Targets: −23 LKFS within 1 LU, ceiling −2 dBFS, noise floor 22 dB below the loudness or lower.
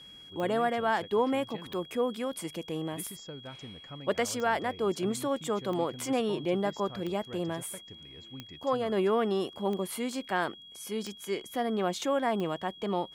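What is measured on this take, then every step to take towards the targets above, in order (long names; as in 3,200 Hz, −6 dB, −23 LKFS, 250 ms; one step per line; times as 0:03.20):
number of clicks 10; interfering tone 3,300 Hz; level of the tone −48 dBFS; integrated loudness −31.5 LKFS; sample peak −16.5 dBFS; target loudness −23.0 LKFS
→ click removal
notch filter 3,300 Hz, Q 30
level +8.5 dB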